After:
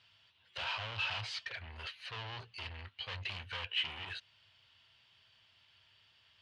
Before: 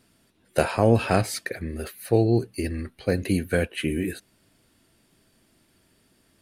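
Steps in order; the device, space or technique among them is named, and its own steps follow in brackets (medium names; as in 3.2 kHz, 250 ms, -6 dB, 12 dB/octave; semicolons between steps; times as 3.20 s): scooped metal amplifier (valve stage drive 34 dB, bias 0.25; cabinet simulation 100–4400 Hz, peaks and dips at 100 Hz +8 dB, 180 Hz -7 dB, 960 Hz +6 dB, 3 kHz +10 dB; amplifier tone stack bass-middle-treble 10-0-10); trim +3 dB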